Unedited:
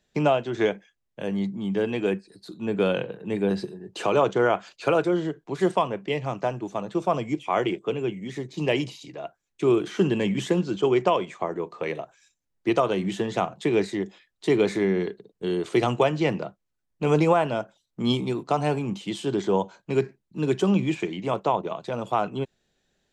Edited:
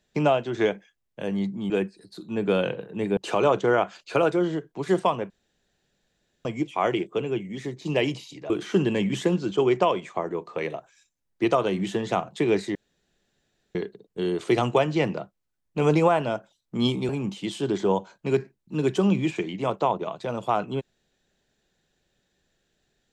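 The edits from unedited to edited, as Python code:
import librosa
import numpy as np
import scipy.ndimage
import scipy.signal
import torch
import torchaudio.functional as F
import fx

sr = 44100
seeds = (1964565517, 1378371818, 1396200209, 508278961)

y = fx.edit(x, sr, fx.cut(start_s=1.7, length_s=0.31),
    fx.cut(start_s=3.48, length_s=0.41),
    fx.room_tone_fill(start_s=6.02, length_s=1.15),
    fx.cut(start_s=9.22, length_s=0.53),
    fx.room_tone_fill(start_s=14.0, length_s=1.0),
    fx.cut(start_s=18.34, length_s=0.39), tone=tone)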